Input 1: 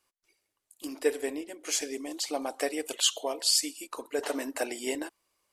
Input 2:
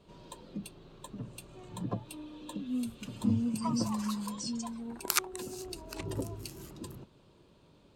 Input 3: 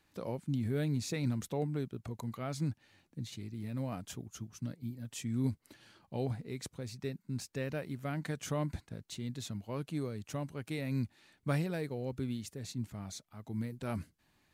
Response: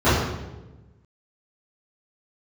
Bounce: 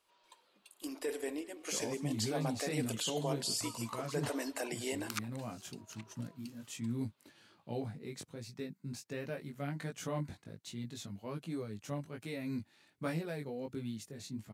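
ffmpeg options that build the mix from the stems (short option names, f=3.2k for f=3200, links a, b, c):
-filter_complex "[0:a]alimiter=limit=-23dB:level=0:latency=1:release=14,volume=-4dB,asplit=2[a][b];[b]volume=-20.5dB[c];[1:a]highpass=1.1k,highshelf=f=5.8k:g=-11,volume=-7dB[d];[2:a]highpass=120,flanger=delay=17.5:depth=3.5:speed=1.3,adelay=1550,volume=0.5dB[e];[c]aecho=0:1:208:1[f];[a][d][e][f]amix=inputs=4:normalize=0"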